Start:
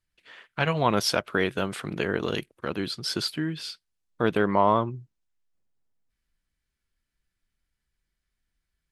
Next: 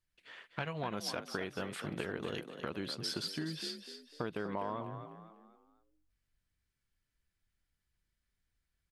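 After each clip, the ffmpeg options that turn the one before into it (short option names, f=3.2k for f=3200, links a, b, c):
-filter_complex "[0:a]acompressor=threshold=-31dB:ratio=6,asplit=2[a][b];[b]asplit=4[c][d][e][f];[c]adelay=249,afreqshift=46,volume=-9dB[g];[d]adelay=498,afreqshift=92,volume=-17.4dB[h];[e]adelay=747,afreqshift=138,volume=-25.8dB[i];[f]adelay=996,afreqshift=184,volume=-34.2dB[j];[g][h][i][j]amix=inputs=4:normalize=0[k];[a][k]amix=inputs=2:normalize=0,volume=-4dB"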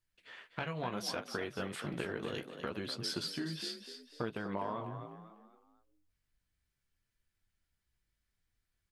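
-af "flanger=delay=8.2:depth=9.7:regen=-37:speed=0.69:shape=sinusoidal,volume=4dB"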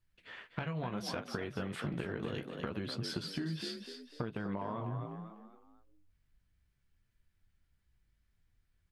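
-af "bass=f=250:g=7,treble=f=4k:g=-6,acompressor=threshold=-37dB:ratio=5,volume=3dB"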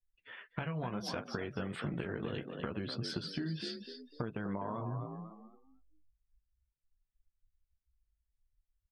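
-af "afftdn=nr=21:nf=-55"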